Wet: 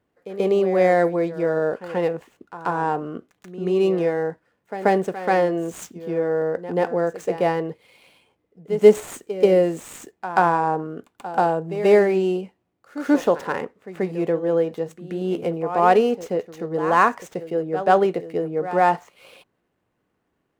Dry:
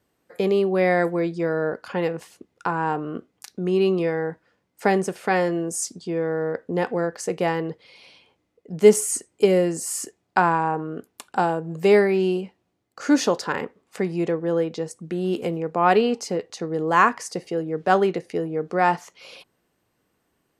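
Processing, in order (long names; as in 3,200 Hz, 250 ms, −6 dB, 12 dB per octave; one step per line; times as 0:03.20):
running median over 9 samples
dynamic equaliser 610 Hz, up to +6 dB, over −32 dBFS, Q 1.3
on a send: backwards echo 134 ms −13 dB
on the sum: level −1.5 dB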